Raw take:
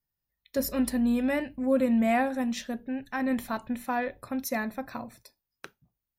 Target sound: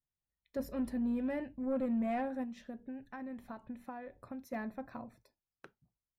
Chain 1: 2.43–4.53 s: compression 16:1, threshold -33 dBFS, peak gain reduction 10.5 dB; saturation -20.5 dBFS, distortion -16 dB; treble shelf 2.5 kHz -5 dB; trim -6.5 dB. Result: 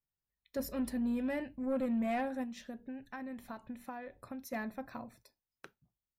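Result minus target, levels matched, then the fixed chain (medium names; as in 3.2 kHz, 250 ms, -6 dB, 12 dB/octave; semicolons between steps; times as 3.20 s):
4 kHz band +7.0 dB
2.43–4.53 s: compression 16:1, threshold -33 dBFS, peak gain reduction 10.5 dB; saturation -20.5 dBFS, distortion -16 dB; treble shelf 2.5 kHz -15.5 dB; trim -6.5 dB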